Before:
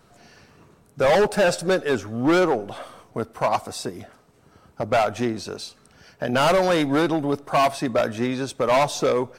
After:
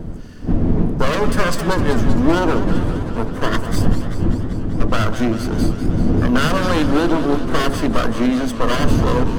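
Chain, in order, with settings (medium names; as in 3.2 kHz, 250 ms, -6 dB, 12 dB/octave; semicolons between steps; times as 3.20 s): comb filter that takes the minimum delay 0.63 ms; wind noise 230 Hz -27 dBFS; bass shelf 340 Hz +6 dB; peak limiter -12 dBFS, peak gain reduction 10.5 dB; on a send at -7 dB: brick-wall FIR low-pass 1.2 kHz + reverberation RT60 0.30 s, pre-delay 3 ms; on the sum: modulated delay 194 ms, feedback 75%, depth 177 cents, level -11.5 dB; trim +3 dB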